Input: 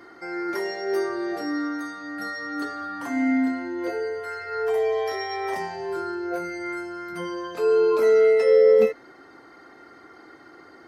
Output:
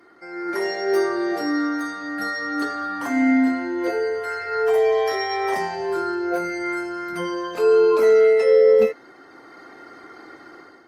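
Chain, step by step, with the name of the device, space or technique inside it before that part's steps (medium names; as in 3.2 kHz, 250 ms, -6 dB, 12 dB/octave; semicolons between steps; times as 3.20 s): video call (high-pass 120 Hz 6 dB/octave; level rider gain up to 10 dB; trim -4.5 dB; Opus 32 kbps 48 kHz)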